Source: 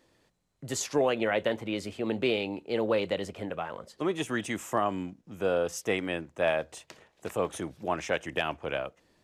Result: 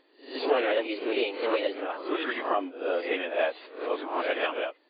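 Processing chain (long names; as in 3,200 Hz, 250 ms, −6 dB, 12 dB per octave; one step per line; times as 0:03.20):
peak hold with a rise ahead of every peak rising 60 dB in 0.86 s
time stretch by phase vocoder 0.53×
linear-phase brick-wall band-pass 250–4,800 Hz
level +3 dB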